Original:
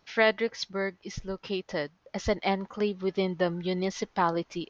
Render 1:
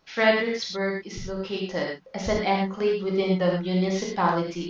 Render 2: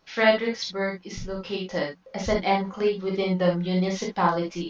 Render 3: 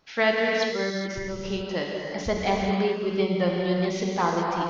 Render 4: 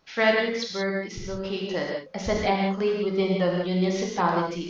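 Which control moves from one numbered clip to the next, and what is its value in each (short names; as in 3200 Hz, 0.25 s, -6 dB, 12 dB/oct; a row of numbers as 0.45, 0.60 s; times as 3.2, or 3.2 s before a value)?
non-linear reverb, gate: 140, 90, 450, 210 ms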